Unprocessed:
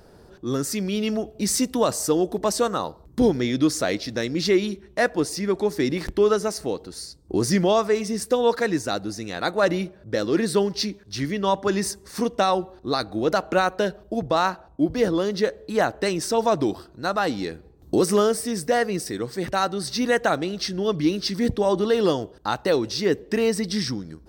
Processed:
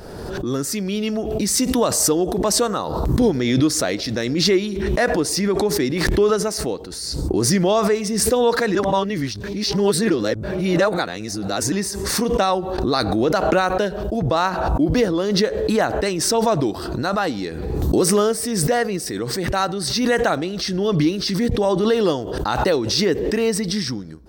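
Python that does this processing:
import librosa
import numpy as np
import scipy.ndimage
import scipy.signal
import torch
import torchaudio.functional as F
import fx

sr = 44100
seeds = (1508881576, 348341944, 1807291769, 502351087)

y = fx.env_flatten(x, sr, amount_pct=70, at=(12.78, 13.27))
y = fx.edit(y, sr, fx.reverse_span(start_s=8.75, length_s=2.97), tone=tone)
y = fx.pre_swell(y, sr, db_per_s=33.0)
y = y * 10.0 ** (1.5 / 20.0)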